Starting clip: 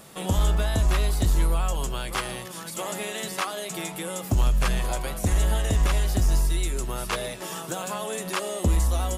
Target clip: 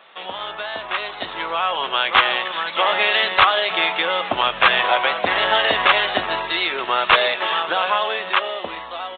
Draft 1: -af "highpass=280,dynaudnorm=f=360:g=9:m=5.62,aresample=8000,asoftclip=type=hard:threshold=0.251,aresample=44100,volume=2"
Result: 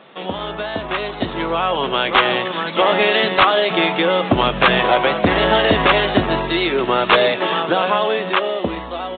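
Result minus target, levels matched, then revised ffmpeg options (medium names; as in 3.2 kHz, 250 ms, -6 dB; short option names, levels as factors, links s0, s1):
250 Hz band +13.0 dB
-af "highpass=830,dynaudnorm=f=360:g=9:m=5.62,aresample=8000,asoftclip=type=hard:threshold=0.251,aresample=44100,volume=2"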